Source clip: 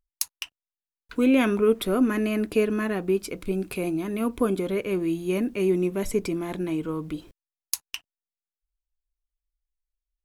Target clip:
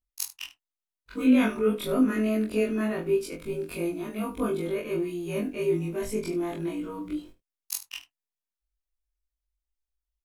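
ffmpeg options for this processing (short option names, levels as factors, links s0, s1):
-af "afftfilt=real='re':imag='-im':win_size=2048:overlap=0.75,aecho=1:1:20|74:0.562|0.188"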